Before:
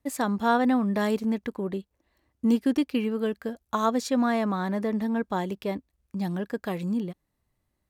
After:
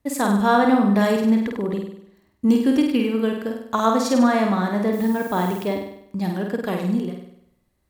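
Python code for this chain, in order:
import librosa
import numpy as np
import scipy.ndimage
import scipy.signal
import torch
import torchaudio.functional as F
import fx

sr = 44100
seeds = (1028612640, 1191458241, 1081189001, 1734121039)

y = fx.dmg_noise_colour(x, sr, seeds[0], colour='violet', level_db=-49.0, at=(4.92, 5.61), fade=0.02)
y = fx.room_flutter(y, sr, wall_m=8.5, rt60_s=0.71)
y = y * 10.0 ** (4.5 / 20.0)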